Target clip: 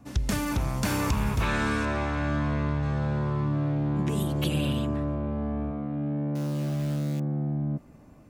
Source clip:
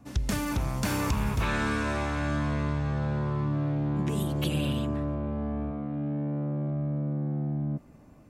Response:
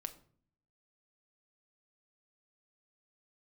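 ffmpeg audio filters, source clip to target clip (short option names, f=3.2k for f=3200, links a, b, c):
-filter_complex "[0:a]asettb=1/sr,asplit=3[a][b][c];[a]atrim=end=1.854[d];[b]atrim=start=1.85:end=2.83,asetpts=PTS-STARTPTS,afade=t=in:d=0.004:c=qsin,afade=t=out:st=0.976:d=0.004:c=qsin,equalizer=f=14k:t=o:w=1.3:g=-15[e];[c]atrim=start=2.826[f];[d][e]acrossfade=d=0.004:c1=hsin:c2=qsin[g];[g][f]acrossfade=d=0.004:c1=qsin:c2=hsin,asettb=1/sr,asplit=3[h][i][j];[h]atrim=end=6.354[k];[i]atrim=start=6.35:end=7.2,asetpts=PTS-STARTPTS,afade=t=in:d=0.004:c=qsin,afade=t=out:st=0.846:d=0.004:c=qsin,acrusher=bits=8:dc=4:mix=0:aa=0.000001[l];[j]atrim=start=7.196[m];[k][l]acrossfade=d=0.004:c1=hsin:c2=qsin[n];[n][m]acrossfade=d=0.004:c1=qsin:c2=hsin,volume=1.5dB"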